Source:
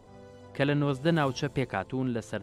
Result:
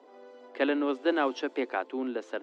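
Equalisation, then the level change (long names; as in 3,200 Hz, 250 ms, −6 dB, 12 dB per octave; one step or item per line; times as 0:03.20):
Butterworth high-pass 260 Hz 72 dB per octave
high-frequency loss of the air 180 metres
high-shelf EQ 8,900 Hz +4.5 dB
+1.5 dB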